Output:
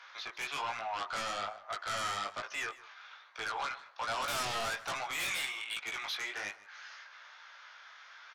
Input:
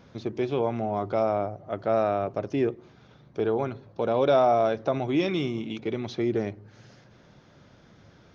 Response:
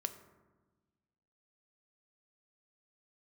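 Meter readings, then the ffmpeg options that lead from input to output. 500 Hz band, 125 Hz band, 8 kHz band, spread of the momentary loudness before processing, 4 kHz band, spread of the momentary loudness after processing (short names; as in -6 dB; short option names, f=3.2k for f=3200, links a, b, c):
-21.0 dB, -21.5 dB, n/a, 10 LU, +4.0 dB, 19 LU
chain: -filter_complex "[0:a]highpass=f=1.2k:w=0.5412,highpass=f=1.2k:w=1.3066,aemphasis=mode=reproduction:type=75kf,asplit=2[a][b];[b]aeval=exprs='0.0562*sin(PI/2*7.08*val(0)/0.0562)':c=same,volume=-6dB[c];[a][c]amix=inputs=2:normalize=0,flanger=delay=17.5:depth=4.5:speed=1.2,aecho=1:1:152:0.106"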